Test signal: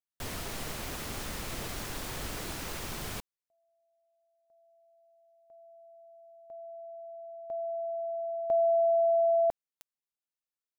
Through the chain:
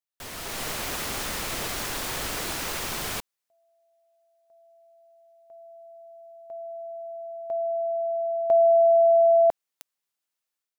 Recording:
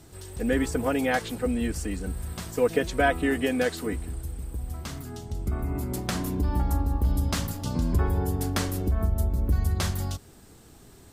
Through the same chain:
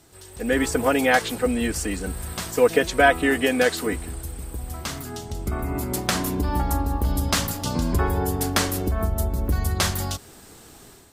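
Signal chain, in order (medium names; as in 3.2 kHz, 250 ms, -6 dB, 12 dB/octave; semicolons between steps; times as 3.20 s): bass shelf 310 Hz -9 dB; level rider gain up to 9 dB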